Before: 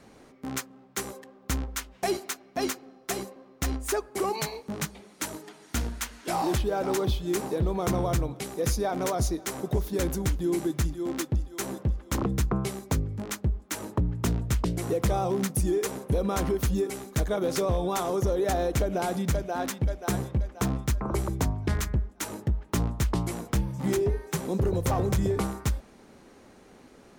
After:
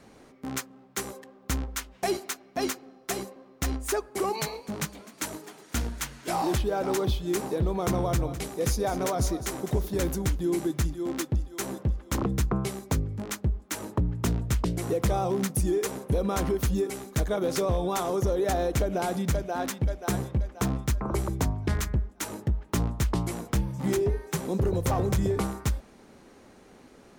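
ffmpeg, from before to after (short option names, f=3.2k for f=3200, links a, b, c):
-filter_complex "[0:a]asettb=1/sr,asplit=3[a][b][c];[a]atrim=end=4.214[d];[b]atrim=start=4.21:end=6.29,asetpts=PTS-STARTPTS,afade=t=in:d=0.004:c=qsin,afade=t=out:st=2.076:d=0.004:c=qsin,asplit=6[e][f][g][h][i][j];[f]adelay=254,afreqshift=77,volume=-19.5dB[k];[g]adelay=508,afreqshift=154,volume=-23.7dB[l];[h]adelay=762,afreqshift=231,volume=-27.8dB[m];[i]adelay=1016,afreqshift=308,volume=-32dB[n];[j]adelay=1270,afreqshift=385,volume=-36.1dB[o];[e][k][l][m][n][o]amix=inputs=6:normalize=0,atrim=end_sample=91728[p];[c]atrim=start=6.286[q];[d][p]acrossfade=d=0.004:c1=hsin:c2=qsin[r];[r][q]acrossfade=d=0.004:c1=qsin:c2=hsin,asettb=1/sr,asplit=3[s][t][u];[s]atrim=end=7.994[v];[t]atrim=start=7.99:end=10.13,asetpts=PTS-STARTPTS,afade=t=in:d=0.004:c=qsin,afade=t=out:st=2.136:d=0.004:c=qsin,aecho=1:1:205:0.251,atrim=end_sample=94374[w];[u]atrim=start=10.126[x];[v][w]acrossfade=d=0.004:c1=hsin:c2=qsin[y];[y][x]acrossfade=d=0.004:c1=qsin:c2=hsin"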